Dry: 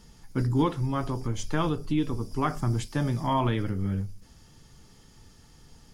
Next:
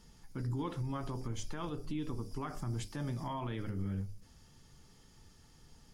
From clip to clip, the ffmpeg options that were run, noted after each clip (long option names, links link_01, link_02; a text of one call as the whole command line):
ffmpeg -i in.wav -af "alimiter=limit=-23.5dB:level=0:latency=1:release=73,bandreject=frequency=52.28:width_type=h:width=4,bandreject=frequency=104.56:width_type=h:width=4,bandreject=frequency=156.84:width_type=h:width=4,bandreject=frequency=209.12:width_type=h:width=4,bandreject=frequency=261.4:width_type=h:width=4,bandreject=frequency=313.68:width_type=h:width=4,bandreject=frequency=365.96:width_type=h:width=4,bandreject=frequency=418.24:width_type=h:width=4,bandreject=frequency=470.52:width_type=h:width=4,bandreject=frequency=522.8:width_type=h:width=4,bandreject=frequency=575.08:width_type=h:width=4,bandreject=frequency=627.36:width_type=h:width=4,bandreject=frequency=679.64:width_type=h:width=4,bandreject=frequency=731.92:width_type=h:width=4,bandreject=frequency=784.2:width_type=h:width=4,volume=-6dB" out.wav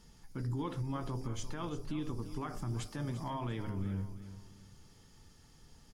ffmpeg -i in.wav -af "aecho=1:1:345|690|1035:0.224|0.0784|0.0274" out.wav